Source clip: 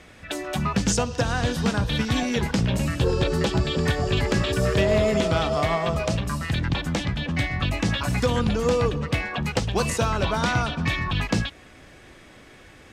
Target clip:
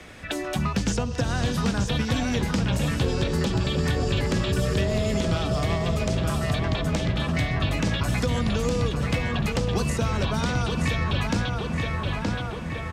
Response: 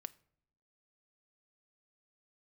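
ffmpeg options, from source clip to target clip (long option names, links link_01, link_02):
-filter_complex "[0:a]asplit=2[link_01][link_02];[link_02]adelay=922,lowpass=frequency=3400:poles=1,volume=-6dB,asplit=2[link_03][link_04];[link_04]adelay=922,lowpass=frequency=3400:poles=1,volume=0.53,asplit=2[link_05][link_06];[link_06]adelay=922,lowpass=frequency=3400:poles=1,volume=0.53,asplit=2[link_07][link_08];[link_08]adelay=922,lowpass=frequency=3400:poles=1,volume=0.53,asplit=2[link_09][link_10];[link_10]adelay=922,lowpass=frequency=3400:poles=1,volume=0.53,asplit=2[link_11][link_12];[link_12]adelay=922,lowpass=frequency=3400:poles=1,volume=0.53,asplit=2[link_13][link_14];[link_14]adelay=922,lowpass=frequency=3400:poles=1,volume=0.53[link_15];[link_01][link_03][link_05][link_07][link_09][link_11][link_13][link_15]amix=inputs=8:normalize=0,acrossover=split=86|290|3500[link_16][link_17][link_18][link_19];[link_16]acompressor=threshold=-33dB:ratio=4[link_20];[link_17]acompressor=threshold=-30dB:ratio=4[link_21];[link_18]acompressor=threshold=-34dB:ratio=4[link_22];[link_19]acompressor=threshold=-41dB:ratio=4[link_23];[link_20][link_21][link_22][link_23]amix=inputs=4:normalize=0,volume=4dB"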